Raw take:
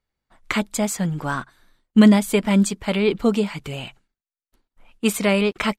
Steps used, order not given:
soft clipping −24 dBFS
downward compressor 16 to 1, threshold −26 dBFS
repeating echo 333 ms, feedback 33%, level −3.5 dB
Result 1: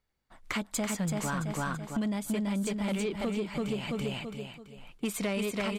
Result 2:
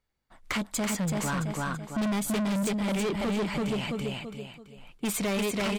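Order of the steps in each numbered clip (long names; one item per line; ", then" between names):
repeating echo, then downward compressor, then soft clipping
repeating echo, then soft clipping, then downward compressor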